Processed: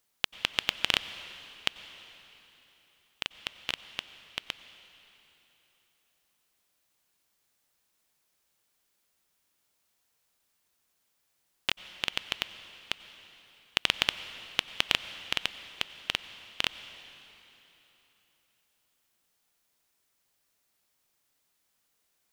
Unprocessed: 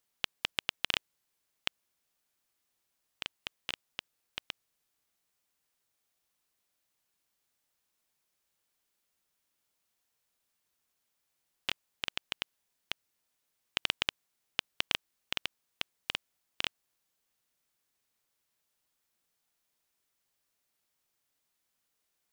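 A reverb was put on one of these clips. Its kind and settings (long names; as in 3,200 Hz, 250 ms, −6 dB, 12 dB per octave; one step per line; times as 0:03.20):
dense smooth reverb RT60 3.4 s, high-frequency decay 0.95×, pre-delay 80 ms, DRR 12.5 dB
level +5 dB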